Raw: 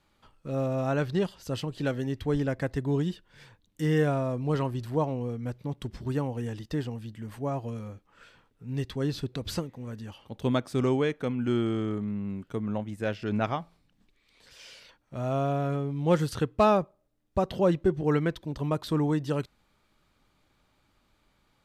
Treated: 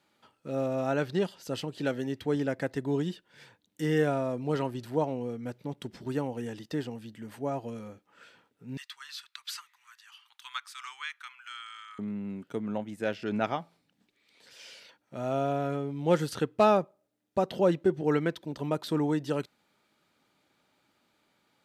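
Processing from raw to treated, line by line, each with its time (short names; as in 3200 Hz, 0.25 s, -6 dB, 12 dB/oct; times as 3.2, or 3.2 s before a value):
8.77–11.99 elliptic high-pass 1100 Hz, stop band 50 dB
whole clip: HPF 190 Hz 12 dB/oct; notch 1100 Hz, Q 9.8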